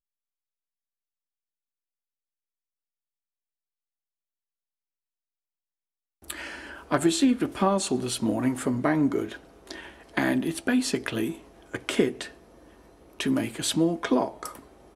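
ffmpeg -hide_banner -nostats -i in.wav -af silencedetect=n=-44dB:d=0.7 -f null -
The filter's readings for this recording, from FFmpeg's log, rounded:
silence_start: 0.00
silence_end: 6.24 | silence_duration: 6.24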